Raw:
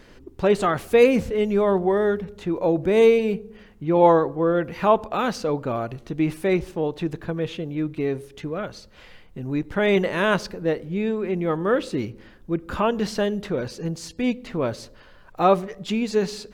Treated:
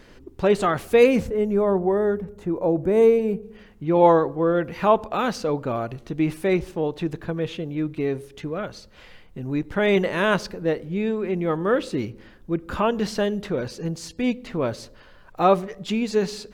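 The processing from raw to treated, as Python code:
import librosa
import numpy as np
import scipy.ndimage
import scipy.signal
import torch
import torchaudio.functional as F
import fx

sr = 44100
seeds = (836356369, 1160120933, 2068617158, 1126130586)

y = fx.peak_eq(x, sr, hz=3500.0, db=-12.5, octaves=1.9, at=(1.27, 3.43))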